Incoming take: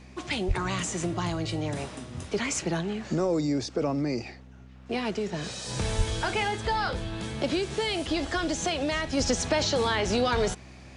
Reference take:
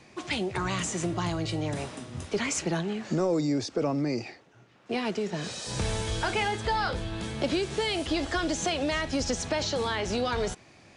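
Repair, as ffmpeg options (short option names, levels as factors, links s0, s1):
-filter_complex "[0:a]bandreject=f=63.9:t=h:w=4,bandreject=f=127.8:t=h:w=4,bandreject=f=191.7:t=h:w=4,bandreject=f=255.6:t=h:w=4,asplit=3[s0][s1][s2];[s0]afade=t=out:st=0.47:d=0.02[s3];[s1]highpass=f=140:w=0.5412,highpass=f=140:w=1.3066,afade=t=in:st=0.47:d=0.02,afade=t=out:st=0.59:d=0.02[s4];[s2]afade=t=in:st=0.59:d=0.02[s5];[s3][s4][s5]amix=inputs=3:normalize=0,asplit=3[s6][s7][s8];[s6]afade=t=out:st=5.97:d=0.02[s9];[s7]highpass=f=140:w=0.5412,highpass=f=140:w=1.3066,afade=t=in:st=5.97:d=0.02,afade=t=out:st=6.09:d=0.02[s10];[s8]afade=t=in:st=6.09:d=0.02[s11];[s9][s10][s11]amix=inputs=3:normalize=0,asetnsamples=n=441:p=0,asendcmd='9.17 volume volume -3.5dB',volume=1"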